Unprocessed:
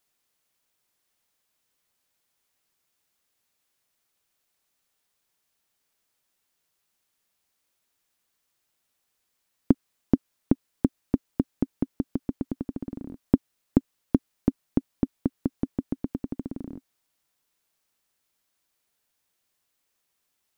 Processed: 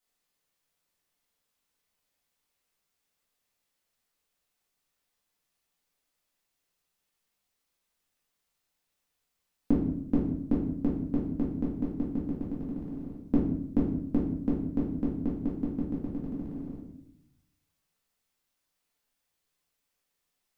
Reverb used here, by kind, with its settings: simulated room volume 180 m³, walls mixed, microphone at 2 m; trim -10.5 dB

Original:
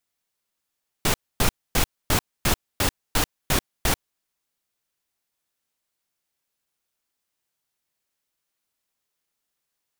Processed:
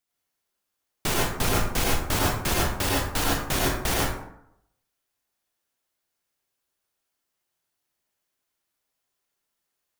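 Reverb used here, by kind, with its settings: plate-style reverb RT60 0.77 s, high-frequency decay 0.5×, pre-delay 75 ms, DRR -4 dB; trim -4 dB

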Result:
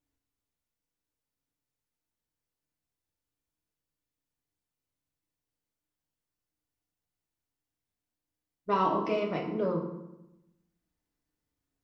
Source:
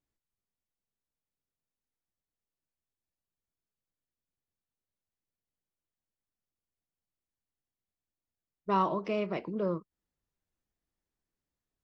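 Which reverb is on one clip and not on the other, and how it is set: FDN reverb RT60 0.9 s, low-frequency decay 1.35×, high-frequency decay 0.7×, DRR 0 dB

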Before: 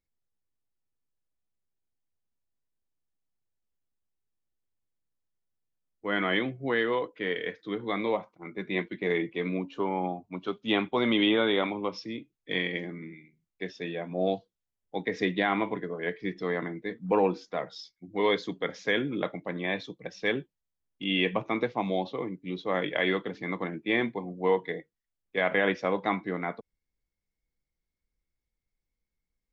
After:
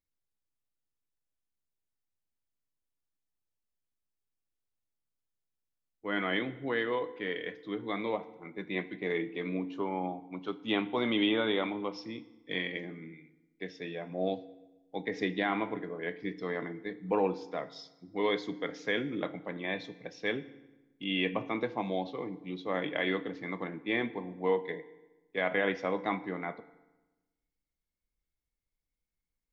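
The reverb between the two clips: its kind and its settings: FDN reverb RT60 1.1 s, low-frequency decay 1.25×, high-frequency decay 0.8×, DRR 13.5 dB; trim -4.5 dB

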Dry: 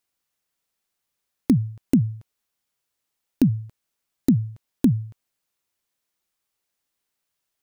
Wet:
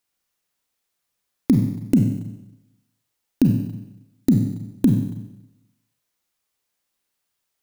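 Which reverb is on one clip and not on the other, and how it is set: Schroeder reverb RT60 0.92 s, combs from 31 ms, DRR 3.5 dB; trim +1 dB

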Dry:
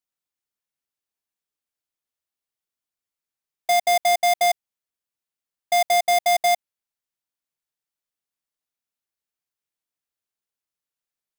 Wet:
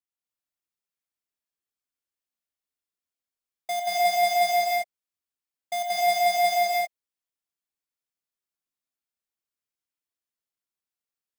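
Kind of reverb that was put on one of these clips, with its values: gated-style reverb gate 330 ms rising, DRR -5 dB; trim -10 dB

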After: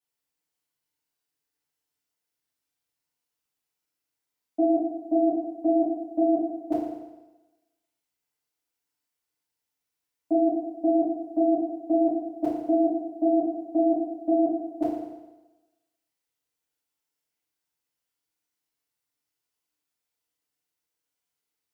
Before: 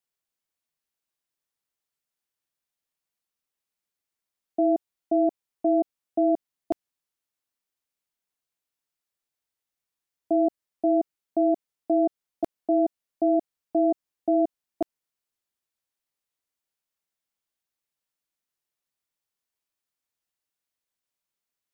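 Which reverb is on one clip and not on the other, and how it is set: FDN reverb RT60 1.1 s, low-frequency decay 0.9×, high-frequency decay 0.95×, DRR -10 dB; trim -8 dB

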